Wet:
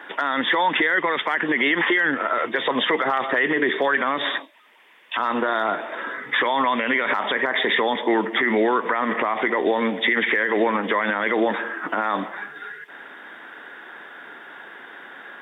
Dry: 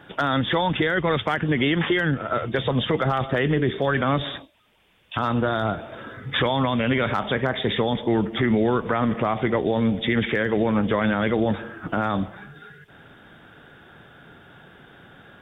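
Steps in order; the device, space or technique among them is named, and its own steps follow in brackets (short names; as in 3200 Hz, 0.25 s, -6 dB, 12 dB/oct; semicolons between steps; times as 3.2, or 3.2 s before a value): laptop speaker (HPF 270 Hz 24 dB/oct; bell 1000 Hz +8.5 dB 0.46 oct; bell 1900 Hz +12 dB 0.52 oct; limiter -14.5 dBFS, peak gain reduction 10.5 dB); gain +3.5 dB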